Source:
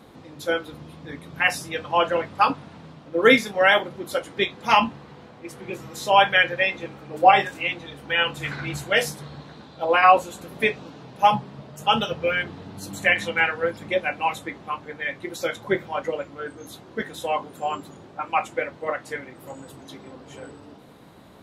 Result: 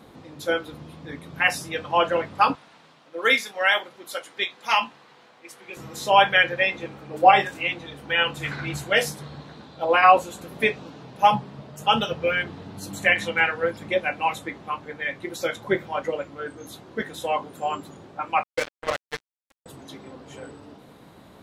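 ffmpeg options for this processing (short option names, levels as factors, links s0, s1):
-filter_complex "[0:a]asettb=1/sr,asplit=3[s0][s1][s2];[s0]atrim=end=2.554[s3];[s1]atrim=start=2.55:end=5.77,asetpts=PTS-STARTPTS,afade=t=in:d=0.004:c=qsin,afade=t=out:st=3.216:d=0.004:c=qsin,highpass=f=1300:p=1[s4];[s2]atrim=start=5.766[s5];[s3][s4]acrossfade=d=0.004:c1=hsin:c2=qsin[s6];[s6][s5]acrossfade=d=0.004:c1=qsin:c2=hsin,asettb=1/sr,asplit=3[s7][s8][s9];[s7]atrim=end=18.434[s10];[s8]atrim=start=18.43:end=19.66,asetpts=PTS-STARTPTS,afade=t=in:d=0.004:c=qsin,afade=t=out:st=1.226:d=0.004:c=qsin,acrusher=bits=3:mix=0:aa=0.5[s11];[s9]atrim=start=19.656[s12];[s10][s11]acrossfade=d=0.004:c1=hsin:c2=qsin[s13];[s13][s12]acrossfade=d=0.004:c1=qsin:c2=hsin"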